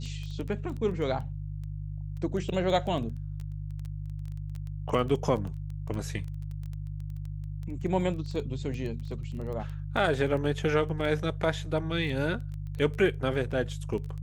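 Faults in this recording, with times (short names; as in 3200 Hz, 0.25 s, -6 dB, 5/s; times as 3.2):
crackle 10/s -34 dBFS
hum 50 Hz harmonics 3 -36 dBFS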